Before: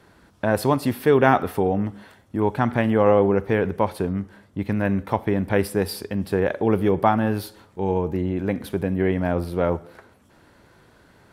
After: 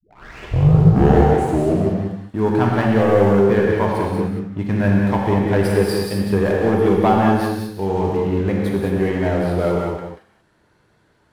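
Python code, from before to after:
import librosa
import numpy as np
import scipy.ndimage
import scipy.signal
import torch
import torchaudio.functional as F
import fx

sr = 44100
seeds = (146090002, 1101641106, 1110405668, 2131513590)

p1 = fx.tape_start_head(x, sr, length_s=1.98)
p2 = scipy.signal.sosfilt(scipy.signal.butter(2, 11000.0, 'lowpass', fs=sr, output='sos'), p1)
p3 = fx.leveller(p2, sr, passes=2)
p4 = p3 + fx.echo_single(p3, sr, ms=185, db=-7.0, dry=0)
p5 = fx.rev_gated(p4, sr, seeds[0], gate_ms=250, shape='flat', drr_db=-1.5)
y = p5 * 10.0 ** (-6.5 / 20.0)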